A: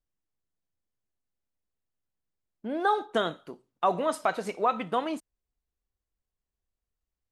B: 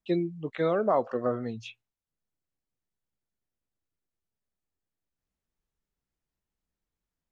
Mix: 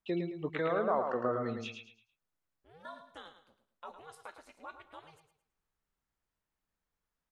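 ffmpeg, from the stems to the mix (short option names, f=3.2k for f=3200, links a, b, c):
-filter_complex "[0:a]highpass=f=1.2k:p=1,aeval=exprs='val(0)*sin(2*PI*160*n/s)':c=same,volume=-15dB,asplit=2[a][b];[b]volume=-10dB[c];[1:a]alimiter=limit=-23dB:level=0:latency=1:release=142,equalizer=f=1.2k:w=0.7:g=8,volume=-3.5dB,asplit=2[d][e];[e]volume=-5.5dB[f];[c][f]amix=inputs=2:normalize=0,aecho=0:1:109|218|327|436:1|0.31|0.0961|0.0298[g];[a][d][g]amix=inputs=3:normalize=0"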